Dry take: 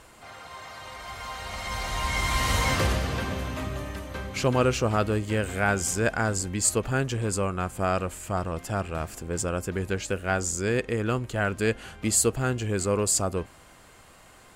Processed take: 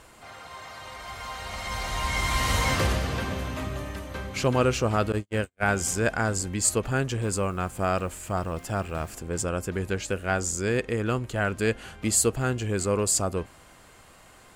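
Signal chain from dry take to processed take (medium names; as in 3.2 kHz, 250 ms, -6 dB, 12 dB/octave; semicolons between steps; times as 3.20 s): 5.12–5.63 s: gate -25 dBFS, range -54 dB; 7.21–9.15 s: added noise white -64 dBFS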